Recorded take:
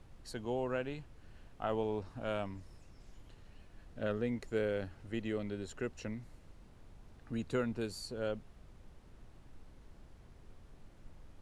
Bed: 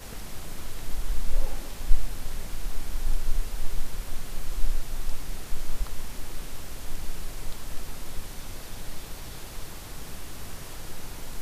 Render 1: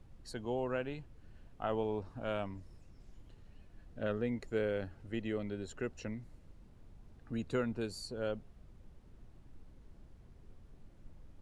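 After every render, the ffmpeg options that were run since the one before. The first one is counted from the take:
-af "afftdn=nr=6:nf=-59"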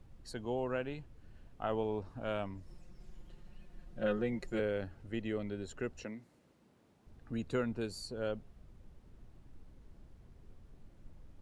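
-filter_complex "[0:a]asettb=1/sr,asplit=3[a][b][c];[a]atrim=end=2.674[d];[b]atrim=start=2.67:end=4.6,asetpts=PTS-STARTPTS,afade=t=in:d=0.004:c=qsin,afade=t=out:st=1.926:d=0.004:c=qsin,aecho=1:1:5.6:0.88,atrim=end_sample=85113[e];[c]atrim=start=4.596[f];[d][e]acrossfade=d=0.004:c1=hsin:c2=qsin[g];[g][f]acrossfade=d=0.004:c1=qsin:c2=hsin,asettb=1/sr,asplit=3[h][i][j];[h]atrim=end=6.044[k];[i]atrim=start=6.04:end=7.07,asetpts=PTS-STARTPTS,afade=t=in:d=0.004:c=qsin,afade=t=out:st=1.026:d=0.004:c=qsin,highpass=220[l];[j]atrim=start=7.066[m];[k][l]acrossfade=d=0.004:c1=hsin:c2=qsin[n];[n][m]acrossfade=d=0.004:c1=qsin:c2=hsin"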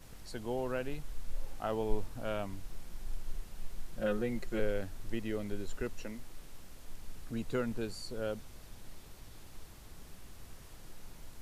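-filter_complex "[1:a]volume=-14.5dB[a];[0:a][a]amix=inputs=2:normalize=0"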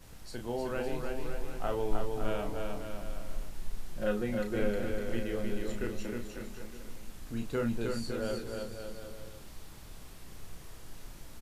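-filter_complex "[0:a]asplit=2[a][b];[b]adelay=34,volume=-6dB[c];[a][c]amix=inputs=2:normalize=0,aecho=1:1:310|558|756.4|915.1|1042:0.631|0.398|0.251|0.158|0.1"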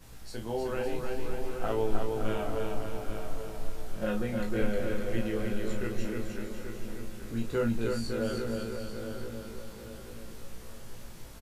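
-filter_complex "[0:a]asplit=2[a][b];[b]adelay=18,volume=-3.5dB[c];[a][c]amix=inputs=2:normalize=0,asplit=2[d][e];[e]adelay=833,lowpass=f=3.3k:p=1,volume=-8dB,asplit=2[f][g];[g]adelay=833,lowpass=f=3.3k:p=1,volume=0.41,asplit=2[h][i];[i]adelay=833,lowpass=f=3.3k:p=1,volume=0.41,asplit=2[j][k];[k]adelay=833,lowpass=f=3.3k:p=1,volume=0.41,asplit=2[l][m];[m]adelay=833,lowpass=f=3.3k:p=1,volume=0.41[n];[d][f][h][j][l][n]amix=inputs=6:normalize=0"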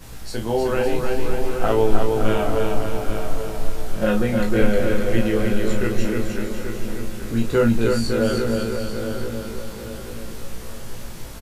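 -af "volume=11.5dB,alimiter=limit=-1dB:level=0:latency=1"

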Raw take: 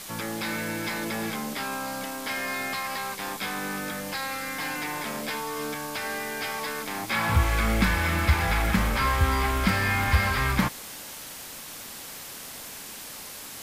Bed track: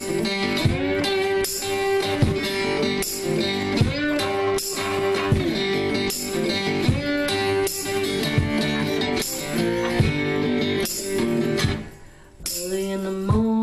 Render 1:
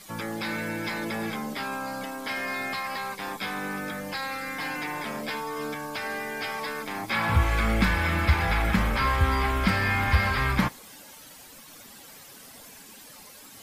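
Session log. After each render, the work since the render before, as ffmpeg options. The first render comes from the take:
-af "afftdn=nr=11:nf=-41"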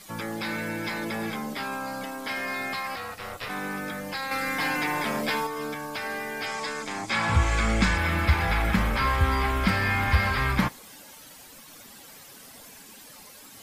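-filter_complex "[0:a]asplit=3[a][b][c];[a]afade=t=out:st=2.95:d=0.02[d];[b]aeval=exprs='val(0)*sin(2*PI*310*n/s)':c=same,afade=t=in:st=2.95:d=0.02,afade=t=out:st=3.48:d=0.02[e];[c]afade=t=in:st=3.48:d=0.02[f];[d][e][f]amix=inputs=3:normalize=0,asettb=1/sr,asplit=3[g][h][i];[g]atrim=end=4.314[j];[h]atrim=start=4.31:end=5.47,asetpts=PTS-STARTPTS,afade=t=in:d=0.004:c=qsin,afade=t=out:st=1.156:d=0.004:c=qsin,acontrast=28[k];[i]atrim=start=5.466[l];[j][k]acrossfade=d=0.004:c1=hsin:c2=qsin[m];[m][l]acrossfade=d=0.004:c1=qsin:c2=hsin,asettb=1/sr,asplit=3[n][o][p];[n]atrim=end=6.464[q];[o]atrim=start=6.46:end=7.98,asetpts=PTS-STARTPTS,afade=t=in:d=0.004:c=qsin,afade=t=out:st=1.516:d=0.004:c=qsin,lowpass=f=7.3k:t=q:w=2.8[r];[p]atrim=start=7.976[s];[q][r]acrossfade=d=0.004:c1=hsin:c2=qsin[t];[t][s]acrossfade=d=0.004:c1=qsin:c2=hsin"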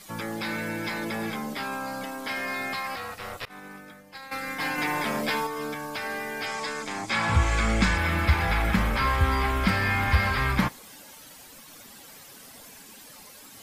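-filter_complex "[0:a]asettb=1/sr,asplit=3[a][b][c];[a]atrim=end=3.454[d];[b]atrim=start=3.45:end=4.78,asetpts=PTS-STARTPTS,afade=t=in:d=0.004:c=qsin,afade=t=out:st=1.326:d=0.004:c=qsin,agate=range=-33dB:threshold=-25dB:ratio=3:release=100:detection=peak[e];[c]atrim=start=4.776[f];[d][e]acrossfade=d=0.004:c1=hsin:c2=qsin[g];[g][f]acrossfade=d=0.004:c1=qsin:c2=hsin"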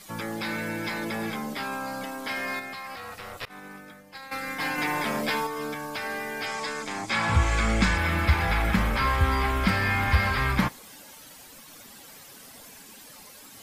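-filter_complex "[0:a]asettb=1/sr,asplit=3[a][b][c];[a]atrim=end=2.594[d];[b]atrim=start=2.59:end=3.37,asetpts=PTS-STARTPTS,afade=t=in:d=0.004:c=qsin,afade=t=out:st=0.776:d=0.004:c=qsin,acompressor=threshold=-34dB:ratio=6:attack=3.2:release=140:knee=1:detection=peak[e];[c]atrim=start=3.366[f];[d][e]acrossfade=d=0.004:c1=hsin:c2=qsin[g];[g][f]acrossfade=d=0.004:c1=qsin:c2=hsin"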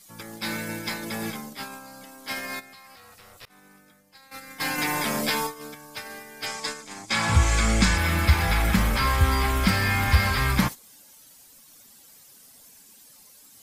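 -af "bass=f=250:g=3,treble=f=4k:g=10,agate=range=-12dB:threshold=-29dB:ratio=16:detection=peak"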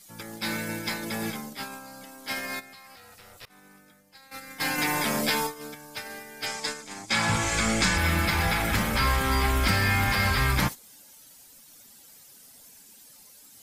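-af "afftfilt=real='re*lt(hypot(re,im),0.794)':imag='im*lt(hypot(re,im),0.794)':win_size=1024:overlap=0.75,bandreject=f=1.1k:w=17"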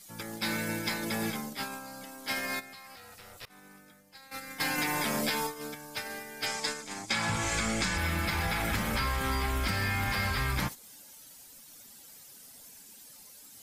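-af "acompressor=threshold=-27dB:ratio=6"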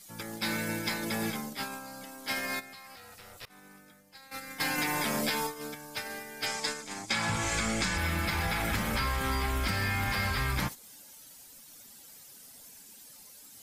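-af anull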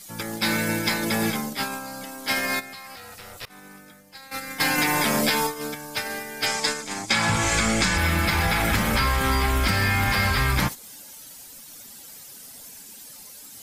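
-af "volume=8.5dB"

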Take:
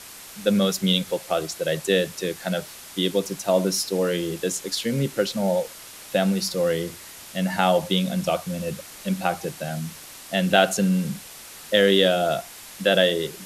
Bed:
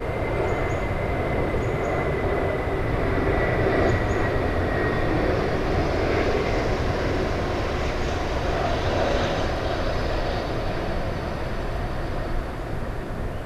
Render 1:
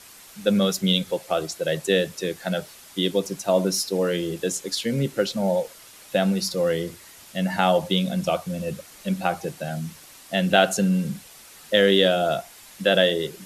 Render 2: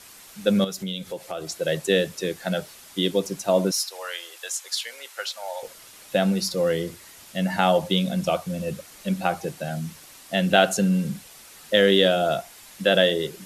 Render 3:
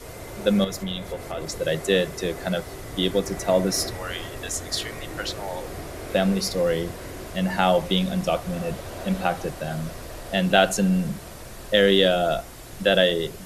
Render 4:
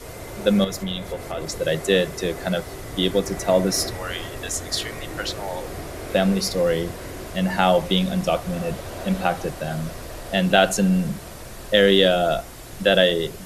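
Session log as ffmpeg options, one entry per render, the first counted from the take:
-af "afftdn=nr=6:nf=-42"
-filter_complex "[0:a]asettb=1/sr,asplit=3[a][b][c];[a]atrim=end=0.644[d];[b]atrim=start=0.64:end=1.47,asetpts=PTS-STARTPTS,afade=t=in:d=0.004:c=qsin,afade=t=out:st=0.826:d=0.004:c=qsin,acompressor=threshold=-31dB:ratio=2.5:attack=3.2:release=140:knee=1:detection=peak[e];[c]atrim=start=1.466[f];[d][e]acrossfade=d=0.004:c1=hsin:c2=qsin[g];[g][f]acrossfade=d=0.004:c1=qsin:c2=hsin,asettb=1/sr,asplit=3[h][i][j];[h]atrim=end=3.714[k];[i]atrim=start=3.71:end=5.63,asetpts=PTS-STARTPTS,afade=t=in:d=0.004:c=qsin,afade=t=out:st=1.916:d=0.004:c=qsin,highpass=f=790:w=0.5412,highpass=f=790:w=1.3066[l];[j]atrim=start=5.626[m];[k][l]acrossfade=d=0.004:c1=hsin:c2=qsin[n];[n][m]acrossfade=d=0.004:c1=qsin:c2=hsin"
-filter_complex "[1:a]volume=-13dB[a];[0:a][a]amix=inputs=2:normalize=0"
-af "volume=2dB,alimiter=limit=-2dB:level=0:latency=1"

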